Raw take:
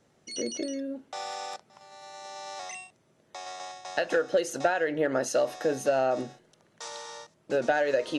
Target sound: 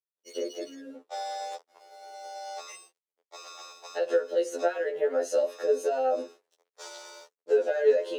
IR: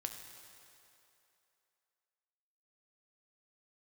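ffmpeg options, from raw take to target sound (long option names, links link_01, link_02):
-af "aeval=exprs='sgn(val(0))*max(abs(val(0))-0.0015,0)':channel_layout=same,alimiter=limit=-22dB:level=0:latency=1:release=261,highpass=frequency=450:width_type=q:width=4.9,afftfilt=real='re*2*eq(mod(b,4),0)':imag='im*2*eq(mod(b,4),0)':win_size=2048:overlap=0.75"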